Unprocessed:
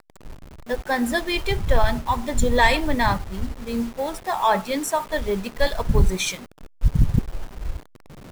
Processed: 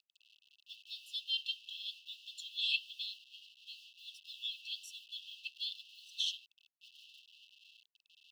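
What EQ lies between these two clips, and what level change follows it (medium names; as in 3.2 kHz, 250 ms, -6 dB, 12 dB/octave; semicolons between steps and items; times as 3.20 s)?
brick-wall FIR high-pass 2.6 kHz; distance through air 350 m; +3.5 dB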